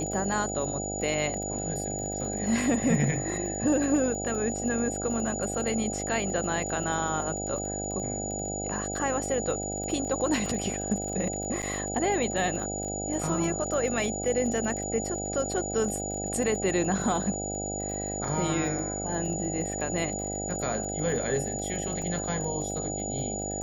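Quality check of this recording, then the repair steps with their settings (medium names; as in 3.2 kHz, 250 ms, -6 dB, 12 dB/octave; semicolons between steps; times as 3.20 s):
buzz 50 Hz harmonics 16 -35 dBFS
crackle 21 per s -34 dBFS
whine 6.9 kHz -34 dBFS
11.62–11.63 s: dropout 8.3 ms
22.02 s: dropout 3.3 ms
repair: de-click; de-hum 50 Hz, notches 16; band-stop 6.9 kHz, Q 30; interpolate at 11.62 s, 8.3 ms; interpolate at 22.02 s, 3.3 ms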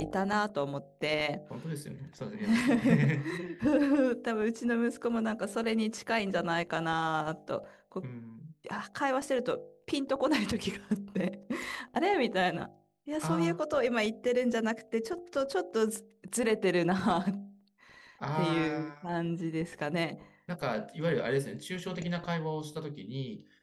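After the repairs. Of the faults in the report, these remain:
nothing left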